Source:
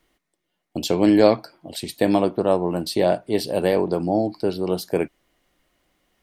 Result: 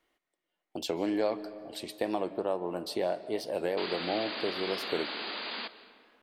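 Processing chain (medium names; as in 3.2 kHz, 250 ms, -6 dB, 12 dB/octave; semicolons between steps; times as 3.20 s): tone controls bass -12 dB, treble -6 dB; compression 2:1, threshold -24 dBFS, peak gain reduction 8 dB; painted sound noise, 3.77–5.68 s, 200–4900 Hz -32 dBFS; algorithmic reverb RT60 2.3 s, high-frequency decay 0.55×, pre-delay 105 ms, DRR 15 dB; warped record 45 rpm, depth 100 cents; trim -6 dB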